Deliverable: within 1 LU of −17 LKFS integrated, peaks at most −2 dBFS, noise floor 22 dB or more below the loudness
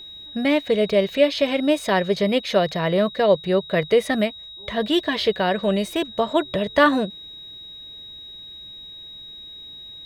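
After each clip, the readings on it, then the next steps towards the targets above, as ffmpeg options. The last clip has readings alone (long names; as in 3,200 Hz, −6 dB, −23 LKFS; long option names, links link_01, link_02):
interfering tone 3,800 Hz; level of the tone −37 dBFS; integrated loudness −21.0 LKFS; sample peak −4.5 dBFS; target loudness −17.0 LKFS
→ -af "bandreject=frequency=3800:width=30"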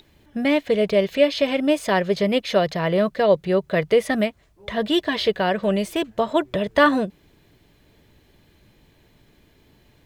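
interfering tone none found; integrated loudness −21.0 LKFS; sample peak −4.0 dBFS; target loudness −17.0 LKFS
→ -af "volume=4dB,alimiter=limit=-2dB:level=0:latency=1"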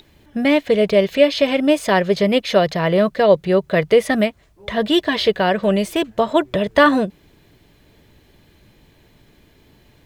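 integrated loudness −17.0 LKFS; sample peak −2.0 dBFS; background noise floor −54 dBFS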